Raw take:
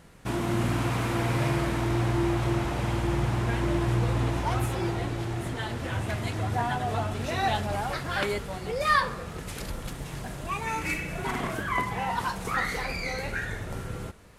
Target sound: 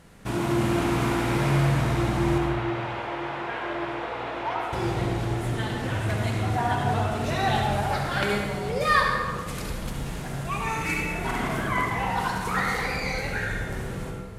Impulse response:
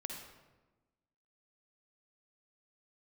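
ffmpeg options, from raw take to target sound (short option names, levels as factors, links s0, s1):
-filter_complex "[0:a]asettb=1/sr,asplit=3[s0][s1][s2];[s0]atrim=end=2.384[s3];[s1]atrim=start=2.38:end=4.73,asetpts=PTS-STARTPTS,afade=t=in:d=0.004:c=qsin,afade=t=out:st=2.346:d=0.004:c=qsin,acrossover=split=380 3800:gain=0.0708 1 0.0891[s4][s5][s6];[s4][s5][s6]amix=inputs=3:normalize=0[s7];[s2]atrim=start=4.726[s8];[s3][s7]acrossfade=d=0.004:c1=hsin:c2=qsin[s9];[s9][s8]acrossfade=d=0.004:c1=qsin:c2=hsin[s10];[1:a]atrim=start_sample=2205,asetrate=35280,aresample=44100[s11];[s10][s11]afir=irnorm=-1:irlink=0,volume=1.41"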